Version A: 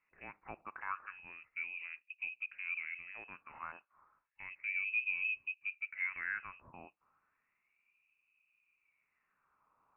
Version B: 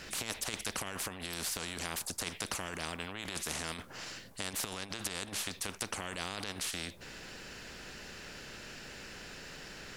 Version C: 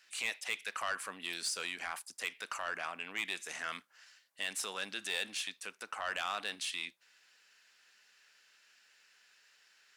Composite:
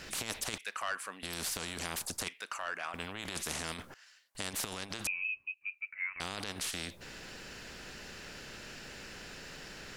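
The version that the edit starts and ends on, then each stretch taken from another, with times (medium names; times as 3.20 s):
B
0.58–1.23 s: from C
2.28–2.94 s: from C
3.94–4.35 s: from C
5.07–6.20 s: from A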